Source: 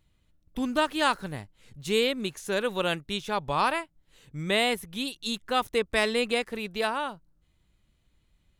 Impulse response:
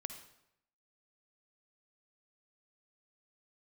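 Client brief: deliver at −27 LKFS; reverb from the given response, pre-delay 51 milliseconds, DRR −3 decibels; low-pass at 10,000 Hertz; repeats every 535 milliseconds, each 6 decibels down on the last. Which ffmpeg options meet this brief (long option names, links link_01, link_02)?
-filter_complex "[0:a]lowpass=10000,aecho=1:1:535|1070|1605|2140|2675|3210:0.501|0.251|0.125|0.0626|0.0313|0.0157,asplit=2[link_01][link_02];[1:a]atrim=start_sample=2205,adelay=51[link_03];[link_02][link_03]afir=irnorm=-1:irlink=0,volume=5.5dB[link_04];[link_01][link_04]amix=inputs=2:normalize=0,volume=-4dB"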